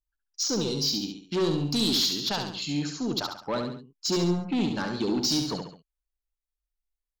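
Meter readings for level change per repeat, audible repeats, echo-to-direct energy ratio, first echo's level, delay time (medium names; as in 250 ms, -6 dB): -7.5 dB, 3, -4.5 dB, -5.5 dB, 69 ms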